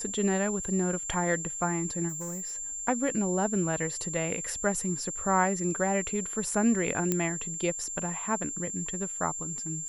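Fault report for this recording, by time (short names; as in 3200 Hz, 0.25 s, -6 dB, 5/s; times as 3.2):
tone 7300 Hz -34 dBFS
0.64 gap 2.2 ms
2.08–2.57 clipped -32.5 dBFS
7.12 pop -12 dBFS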